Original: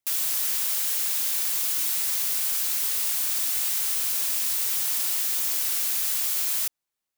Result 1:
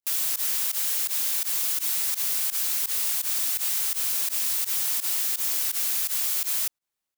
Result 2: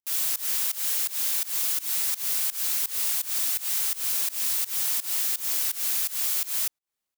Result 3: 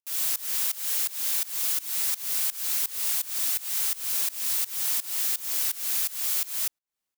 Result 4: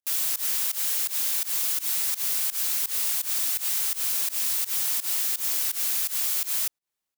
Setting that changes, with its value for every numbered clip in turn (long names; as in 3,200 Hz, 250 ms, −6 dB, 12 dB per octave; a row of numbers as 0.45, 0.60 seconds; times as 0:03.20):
fake sidechain pumping, release: 72, 187, 300, 122 milliseconds